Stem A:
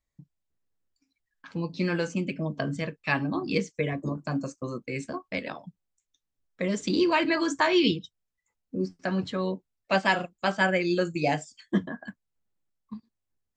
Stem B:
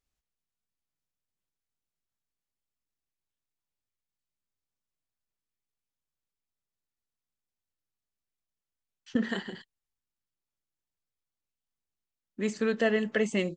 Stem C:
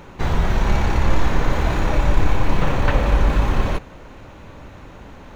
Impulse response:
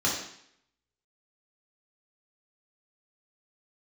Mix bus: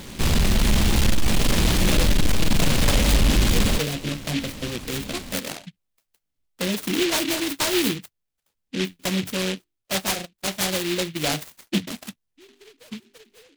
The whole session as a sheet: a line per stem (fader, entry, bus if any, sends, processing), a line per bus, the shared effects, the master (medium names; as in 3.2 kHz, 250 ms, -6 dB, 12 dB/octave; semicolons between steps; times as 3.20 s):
-7.0 dB, 0.00 s, no send, level rider gain up to 11 dB
-13.0 dB, 0.00 s, no send, formants replaced by sine waves; hum notches 50/100/150/200/250/300/350/400 Hz; compression 6:1, threshold -35 dBFS, peak gain reduction 14.5 dB
+1.0 dB, 0.00 s, no send, small resonant body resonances 220/1100 Hz, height 8 dB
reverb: none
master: peaking EQ 6.7 kHz +5.5 dB 0.45 oct; saturation -11.5 dBFS, distortion -12 dB; delay time shaken by noise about 2.8 kHz, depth 0.24 ms